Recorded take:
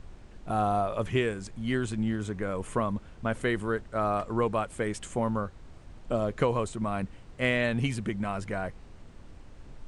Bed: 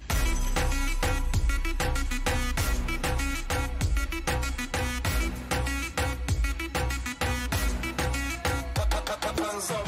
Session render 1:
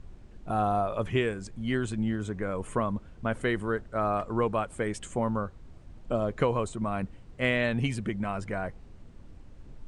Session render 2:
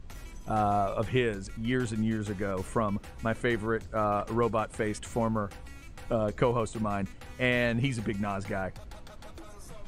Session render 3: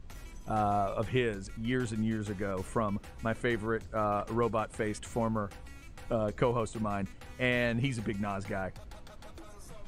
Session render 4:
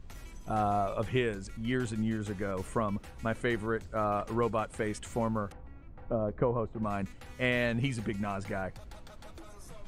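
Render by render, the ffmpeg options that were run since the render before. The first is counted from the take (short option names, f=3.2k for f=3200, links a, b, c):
-af "afftdn=nr=6:nf=-51"
-filter_complex "[1:a]volume=-20dB[a];[0:a][a]amix=inputs=2:normalize=0"
-af "volume=-2.5dB"
-filter_complex "[0:a]asettb=1/sr,asplit=3[a][b][c];[a]atrim=end=5.524[d];[b]atrim=start=5.52:end=6.83,asetpts=PTS-STARTPTS,afade=t=in:d=0.004:c=qsin,afade=t=out:st=1.306:d=0.004:c=qsin,lowpass=1.1k[e];[c]atrim=start=6.826[f];[d][e]acrossfade=d=0.004:c1=hsin:c2=qsin[g];[g][f]acrossfade=d=0.004:c1=qsin:c2=hsin"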